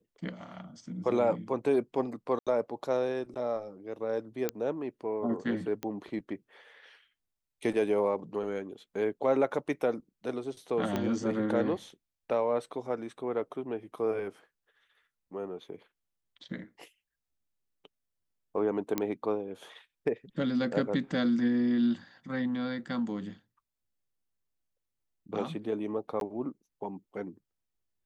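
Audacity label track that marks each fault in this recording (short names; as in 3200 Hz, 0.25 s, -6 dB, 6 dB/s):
2.390000	2.470000	gap 76 ms
4.490000	4.490000	pop -14 dBFS
5.830000	5.830000	pop -21 dBFS
10.960000	10.960000	pop -17 dBFS
18.980000	18.980000	pop -14 dBFS
26.200000	26.210000	gap 12 ms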